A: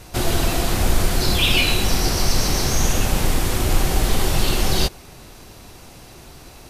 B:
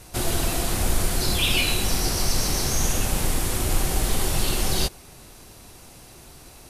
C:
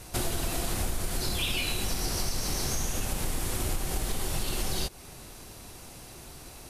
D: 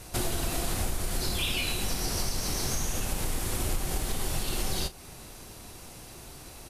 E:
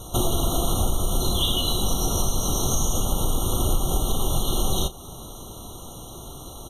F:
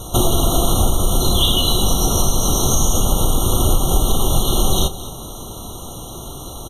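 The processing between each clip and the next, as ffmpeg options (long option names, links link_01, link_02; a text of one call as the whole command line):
ffmpeg -i in.wav -af "equalizer=frequency=10000:width=0.98:gain=7,volume=-5dB" out.wav
ffmpeg -i in.wav -af "acompressor=threshold=-26dB:ratio=6" out.wav
ffmpeg -i in.wav -filter_complex "[0:a]asplit=2[link_01][link_02];[link_02]adelay=36,volume=-12.5dB[link_03];[link_01][link_03]amix=inputs=2:normalize=0" out.wav
ffmpeg -i in.wav -af "afftfilt=real='re*eq(mod(floor(b*sr/1024/1400),2),0)':imag='im*eq(mod(floor(b*sr/1024/1400),2),0)':win_size=1024:overlap=0.75,volume=8dB" out.wav
ffmpeg -i in.wav -af "aecho=1:1:218:0.158,volume=7dB" out.wav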